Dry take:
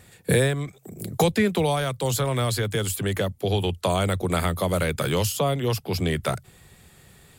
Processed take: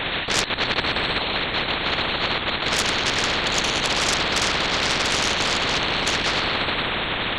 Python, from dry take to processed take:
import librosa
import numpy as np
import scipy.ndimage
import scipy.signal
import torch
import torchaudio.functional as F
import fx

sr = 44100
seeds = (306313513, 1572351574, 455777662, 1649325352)

y = x + 10.0 ** (-13.0 / 20.0) * np.pad(x, (int(75 * sr / 1000.0), 0))[:len(x)]
y = fx.room_shoebox(y, sr, seeds[0], volume_m3=3700.0, walls='mixed', distance_m=4.1)
y = fx.over_compress(y, sr, threshold_db=-23.0, ratio=-0.5, at=(0.42, 2.65), fade=0.02)
y = fx.high_shelf(y, sr, hz=2400.0, db=9.0)
y = fx.lpc_vocoder(y, sr, seeds[1], excitation='whisper', order=10)
y = fx.cheby_harmonics(y, sr, harmonics=(2, 8), levels_db=(-20, -35), full_scale_db=-0.5)
y = fx.low_shelf(y, sr, hz=200.0, db=-12.0)
y = fx.spectral_comp(y, sr, ratio=10.0)